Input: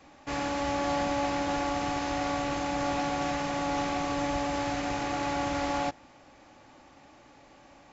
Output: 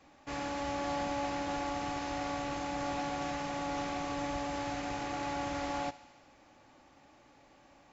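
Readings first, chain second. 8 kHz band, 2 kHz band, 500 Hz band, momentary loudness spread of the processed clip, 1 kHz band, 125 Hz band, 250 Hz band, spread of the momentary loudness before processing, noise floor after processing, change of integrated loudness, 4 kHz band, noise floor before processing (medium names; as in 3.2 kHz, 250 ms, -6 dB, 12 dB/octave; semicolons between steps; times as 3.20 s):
no reading, -6.0 dB, -6.0 dB, 2 LU, -5.5 dB, -6.0 dB, -6.5 dB, 2 LU, -62 dBFS, -6.0 dB, -6.0 dB, -56 dBFS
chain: thinning echo 73 ms, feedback 75%, high-pass 660 Hz, level -18.5 dB; trim -6 dB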